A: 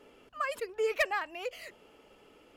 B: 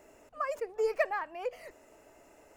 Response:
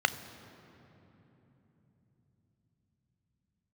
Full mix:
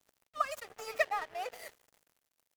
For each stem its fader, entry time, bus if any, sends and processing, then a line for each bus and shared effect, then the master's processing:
+1.0 dB, 0.00 s, no send, automatic ducking −14 dB, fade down 1.90 s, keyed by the second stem
0.0 dB, 1.8 ms, send −11 dB, spectral tilt +4.5 dB per octave; downward compressor 5 to 1, threshold −35 dBFS, peak gain reduction 11.5 dB; low-shelf EQ 240 Hz +11 dB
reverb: on, RT60 3.5 s, pre-delay 3 ms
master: dead-zone distortion −45.5 dBFS

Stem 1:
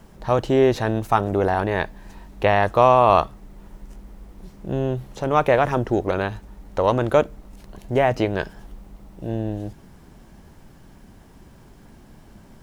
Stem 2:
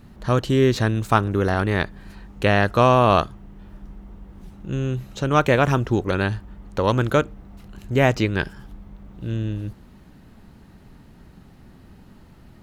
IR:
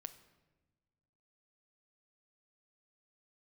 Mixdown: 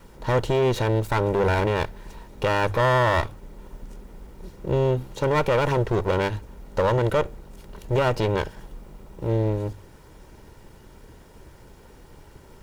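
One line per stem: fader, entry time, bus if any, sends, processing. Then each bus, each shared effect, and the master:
+1.5 dB, 0.00 s, no send, lower of the sound and its delayed copy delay 2.1 ms; mains-hum notches 50/100 Hz
−11.0 dB, 0.00 s, no send, no processing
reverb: not used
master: brickwall limiter −11.5 dBFS, peak gain reduction 8.5 dB

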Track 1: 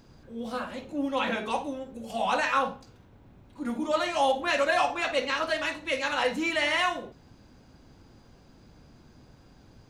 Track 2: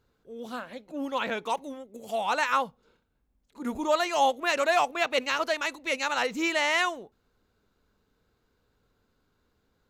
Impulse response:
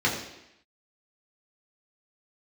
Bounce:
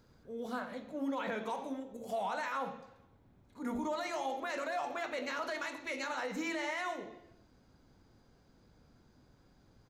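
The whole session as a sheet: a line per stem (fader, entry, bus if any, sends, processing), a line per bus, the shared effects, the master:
−10.5 dB, 0.00 s, no send, downward compressor 2 to 1, threshold −45 dBFS, peak gain reduction 13.5 dB
+1.5 dB, 1 ms, polarity flipped, send −23 dB, brickwall limiter −22 dBFS, peak gain reduction 10 dB; automatic ducking −7 dB, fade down 0.65 s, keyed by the first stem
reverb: on, RT60 0.85 s, pre-delay 3 ms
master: parametric band 2,700 Hz −4.5 dB 0.25 octaves; brickwall limiter −28 dBFS, peak gain reduction 5.5 dB

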